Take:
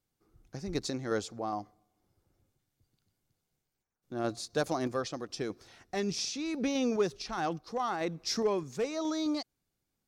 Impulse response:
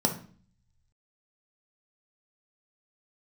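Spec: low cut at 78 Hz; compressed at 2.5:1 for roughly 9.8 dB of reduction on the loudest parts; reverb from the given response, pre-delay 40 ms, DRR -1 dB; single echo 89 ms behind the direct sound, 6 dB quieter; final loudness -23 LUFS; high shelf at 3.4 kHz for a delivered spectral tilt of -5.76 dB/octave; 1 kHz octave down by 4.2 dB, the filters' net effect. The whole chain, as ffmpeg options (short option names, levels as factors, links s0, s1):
-filter_complex "[0:a]highpass=78,equalizer=f=1000:t=o:g=-5.5,highshelf=f=3400:g=-5.5,acompressor=threshold=0.01:ratio=2.5,aecho=1:1:89:0.501,asplit=2[s0][s1];[1:a]atrim=start_sample=2205,adelay=40[s2];[s1][s2]afir=irnorm=-1:irlink=0,volume=0.355[s3];[s0][s3]amix=inputs=2:normalize=0,volume=3.35"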